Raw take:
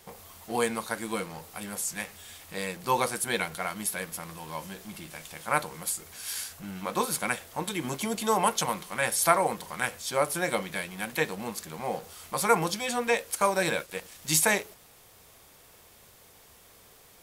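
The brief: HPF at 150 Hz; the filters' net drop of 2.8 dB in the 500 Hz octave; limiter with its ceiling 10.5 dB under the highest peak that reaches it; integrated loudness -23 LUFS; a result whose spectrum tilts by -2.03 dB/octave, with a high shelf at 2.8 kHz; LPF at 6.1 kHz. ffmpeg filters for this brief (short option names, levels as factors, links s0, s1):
-af "highpass=150,lowpass=6100,equalizer=f=500:t=o:g=-3.5,highshelf=f=2800:g=6,volume=2.82,alimiter=limit=0.447:level=0:latency=1"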